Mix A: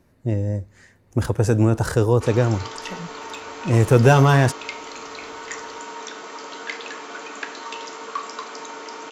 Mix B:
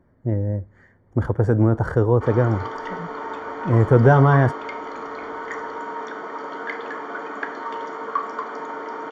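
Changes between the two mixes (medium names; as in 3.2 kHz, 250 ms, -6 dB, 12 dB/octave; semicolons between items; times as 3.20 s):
background +5.0 dB; master: add Savitzky-Golay filter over 41 samples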